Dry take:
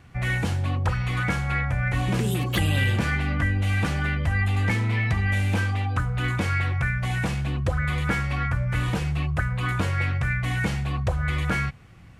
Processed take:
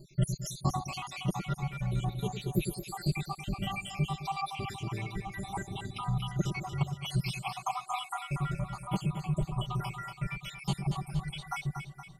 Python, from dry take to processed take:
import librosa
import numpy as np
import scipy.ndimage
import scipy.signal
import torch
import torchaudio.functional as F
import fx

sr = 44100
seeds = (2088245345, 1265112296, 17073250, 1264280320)

p1 = fx.spec_dropout(x, sr, seeds[0], share_pct=82)
p2 = p1 + 0.92 * np.pad(p1, (int(5.1 * sr / 1000.0), 0))[:len(p1)]
p3 = fx.rider(p2, sr, range_db=10, speed_s=0.5)
p4 = fx.fixed_phaser(p3, sr, hz=340.0, stages=8)
y = p4 + fx.echo_split(p4, sr, split_hz=510.0, low_ms=106, high_ms=235, feedback_pct=52, wet_db=-7.5, dry=0)